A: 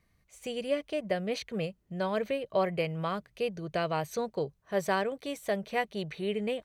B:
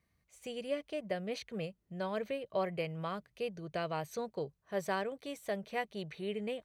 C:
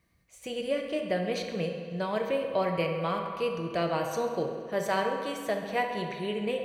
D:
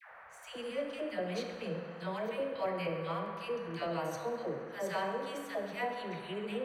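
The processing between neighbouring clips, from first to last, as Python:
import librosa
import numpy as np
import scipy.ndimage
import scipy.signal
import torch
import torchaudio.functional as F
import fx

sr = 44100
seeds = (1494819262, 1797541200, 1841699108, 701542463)

y1 = scipy.signal.sosfilt(scipy.signal.butter(2, 43.0, 'highpass', fs=sr, output='sos'), x)
y1 = y1 * librosa.db_to_amplitude(-6.0)
y2 = fx.echo_wet_lowpass(y1, sr, ms=67, feedback_pct=81, hz=3400.0, wet_db=-10.5)
y2 = fx.rev_fdn(y2, sr, rt60_s=1.2, lf_ratio=0.85, hf_ratio=0.8, size_ms=18.0, drr_db=5.5)
y2 = y2 * librosa.db_to_amplitude(6.0)
y3 = fx.dmg_noise_band(y2, sr, seeds[0], low_hz=540.0, high_hz=1900.0, level_db=-47.0)
y3 = fx.dispersion(y3, sr, late='lows', ms=114.0, hz=710.0)
y3 = y3 * librosa.db_to_amplitude(-7.0)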